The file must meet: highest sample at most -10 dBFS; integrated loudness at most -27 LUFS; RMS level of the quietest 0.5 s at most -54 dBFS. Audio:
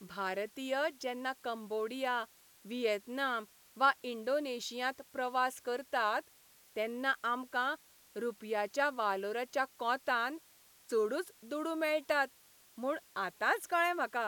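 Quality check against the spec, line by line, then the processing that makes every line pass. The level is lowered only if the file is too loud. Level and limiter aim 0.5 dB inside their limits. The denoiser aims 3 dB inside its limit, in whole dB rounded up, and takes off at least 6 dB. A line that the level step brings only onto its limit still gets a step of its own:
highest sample -15.5 dBFS: OK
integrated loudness -35.0 LUFS: OK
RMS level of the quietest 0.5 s -63 dBFS: OK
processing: none

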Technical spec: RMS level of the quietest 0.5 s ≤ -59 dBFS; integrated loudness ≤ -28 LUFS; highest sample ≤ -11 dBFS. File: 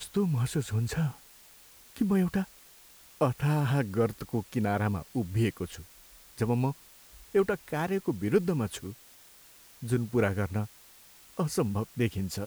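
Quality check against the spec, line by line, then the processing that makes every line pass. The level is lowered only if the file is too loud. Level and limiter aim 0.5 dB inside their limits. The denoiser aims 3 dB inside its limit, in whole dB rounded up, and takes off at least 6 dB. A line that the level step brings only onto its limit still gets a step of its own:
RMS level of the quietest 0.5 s -55 dBFS: fail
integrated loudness -30.0 LUFS: OK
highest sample -12.0 dBFS: OK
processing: denoiser 7 dB, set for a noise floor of -55 dBFS

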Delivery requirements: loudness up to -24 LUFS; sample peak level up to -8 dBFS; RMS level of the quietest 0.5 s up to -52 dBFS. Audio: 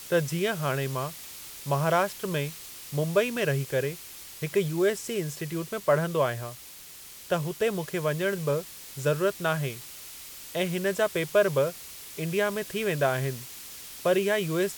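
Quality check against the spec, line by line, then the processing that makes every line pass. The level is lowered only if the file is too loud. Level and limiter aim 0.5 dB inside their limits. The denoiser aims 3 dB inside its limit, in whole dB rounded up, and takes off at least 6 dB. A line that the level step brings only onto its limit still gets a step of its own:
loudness -28.0 LUFS: OK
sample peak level -10.5 dBFS: OK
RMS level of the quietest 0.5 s -46 dBFS: fail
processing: denoiser 9 dB, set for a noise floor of -46 dBFS

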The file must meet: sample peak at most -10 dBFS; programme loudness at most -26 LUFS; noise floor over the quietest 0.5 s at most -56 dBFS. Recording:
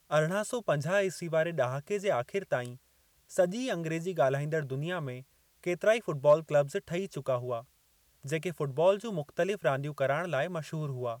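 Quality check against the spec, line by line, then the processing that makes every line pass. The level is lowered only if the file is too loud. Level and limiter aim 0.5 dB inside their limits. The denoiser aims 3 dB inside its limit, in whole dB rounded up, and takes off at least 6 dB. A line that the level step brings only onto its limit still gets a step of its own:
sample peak -13.5 dBFS: OK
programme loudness -31.0 LUFS: OK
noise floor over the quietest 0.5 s -68 dBFS: OK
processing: none

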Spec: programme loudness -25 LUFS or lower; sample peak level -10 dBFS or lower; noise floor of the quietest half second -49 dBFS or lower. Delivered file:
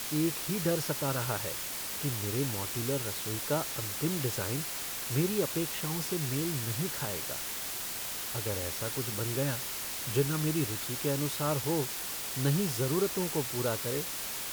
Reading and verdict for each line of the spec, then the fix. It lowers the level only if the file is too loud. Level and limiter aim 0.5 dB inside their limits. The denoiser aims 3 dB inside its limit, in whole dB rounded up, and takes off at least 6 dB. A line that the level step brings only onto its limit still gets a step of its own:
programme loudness -31.5 LUFS: OK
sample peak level -15.5 dBFS: OK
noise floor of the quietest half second -37 dBFS: fail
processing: denoiser 15 dB, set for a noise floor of -37 dBFS

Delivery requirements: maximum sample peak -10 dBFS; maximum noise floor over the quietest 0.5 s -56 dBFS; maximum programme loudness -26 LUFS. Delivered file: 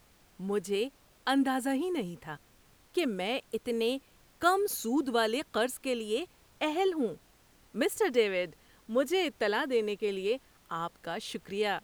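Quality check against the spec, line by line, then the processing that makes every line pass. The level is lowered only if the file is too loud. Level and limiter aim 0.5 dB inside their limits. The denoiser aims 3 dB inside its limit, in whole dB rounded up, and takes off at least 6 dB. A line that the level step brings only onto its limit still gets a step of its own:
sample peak -12.5 dBFS: OK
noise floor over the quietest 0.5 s -62 dBFS: OK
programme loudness -31.5 LUFS: OK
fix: none

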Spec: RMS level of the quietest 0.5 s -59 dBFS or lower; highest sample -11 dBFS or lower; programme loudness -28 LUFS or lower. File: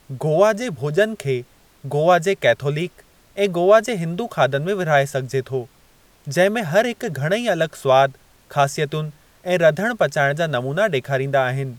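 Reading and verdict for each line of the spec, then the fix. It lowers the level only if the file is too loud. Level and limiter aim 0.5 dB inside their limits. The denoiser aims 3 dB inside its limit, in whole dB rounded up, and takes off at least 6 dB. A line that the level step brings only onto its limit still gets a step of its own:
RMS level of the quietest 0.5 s -54 dBFS: fail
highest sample -3.0 dBFS: fail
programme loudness -19.5 LUFS: fail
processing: gain -9 dB

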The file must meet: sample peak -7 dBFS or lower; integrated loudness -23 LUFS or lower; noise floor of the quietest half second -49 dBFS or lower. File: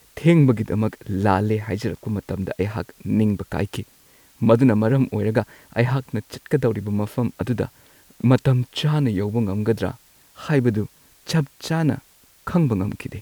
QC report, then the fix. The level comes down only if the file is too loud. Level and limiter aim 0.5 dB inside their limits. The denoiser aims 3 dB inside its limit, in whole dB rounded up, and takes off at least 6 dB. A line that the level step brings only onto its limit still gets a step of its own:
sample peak -3.5 dBFS: fail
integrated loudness -22.0 LUFS: fail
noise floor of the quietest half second -54 dBFS: OK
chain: gain -1.5 dB; limiter -7.5 dBFS

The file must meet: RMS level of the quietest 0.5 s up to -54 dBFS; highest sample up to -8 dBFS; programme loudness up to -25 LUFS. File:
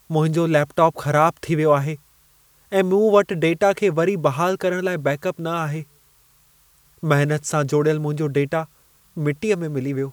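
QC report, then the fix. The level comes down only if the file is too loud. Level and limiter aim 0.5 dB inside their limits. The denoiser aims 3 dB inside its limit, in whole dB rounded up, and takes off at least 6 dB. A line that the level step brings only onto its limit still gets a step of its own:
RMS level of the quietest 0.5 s -57 dBFS: OK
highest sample -2.5 dBFS: fail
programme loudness -20.5 LUFS: fail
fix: gain -5 dB; limiter -8.5 dBFS

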